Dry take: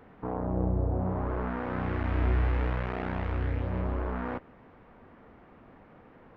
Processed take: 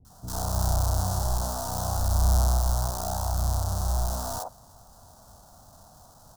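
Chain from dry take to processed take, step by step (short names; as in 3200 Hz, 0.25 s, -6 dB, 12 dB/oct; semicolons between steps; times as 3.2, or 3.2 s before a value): half-waves squared off; EQ curve 100 Hz 0 dB, 300 Hz -13 dB, 460 Hz -13 dB, 680 Hz +6 dB, 1400 Hz -1 dB, 2200 Hz -29 dB, 4100 Hz -1 dB, 5900 Hz +7 dB; three bands offset in time lows, highs, mids 50/100 ms, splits 370/1200 Hz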